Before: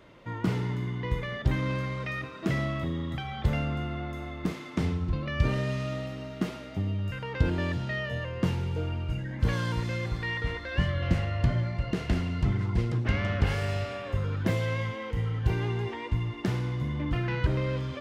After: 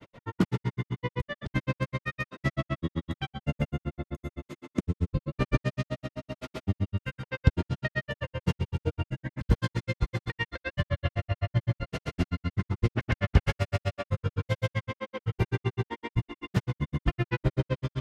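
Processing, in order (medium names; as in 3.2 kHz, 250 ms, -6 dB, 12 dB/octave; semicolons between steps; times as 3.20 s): time-frequency box 3.26–5.33 s, 660–6200 Hz -6 dB; granulator 66 ms, grains 7.8 per s, pitch spread up and down by 0 st; trim +6 dB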